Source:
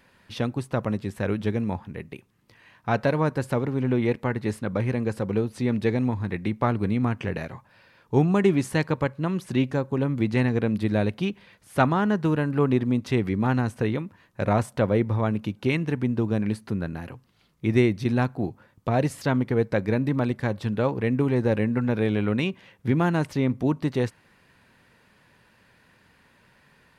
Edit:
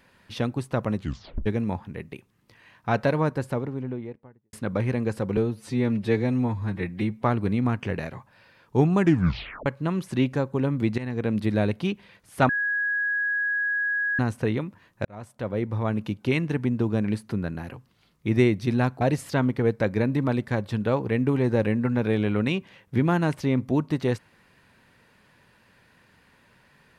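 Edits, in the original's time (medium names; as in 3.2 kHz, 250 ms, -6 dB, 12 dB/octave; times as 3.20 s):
0.96 s: tape stop 0.50 s
3.05–4.53 s: studio fade out
5.37–6.61 s: stretch 1.5×
8.37 s: tape stop 0.67 s
10.36–10.73 s: fade in, from -16 dB
11.87–13.57 s: bleep 1.66 kHz -22.5 dBFS
14.43–15.44 s: fade in
18.39–18.93 s: delete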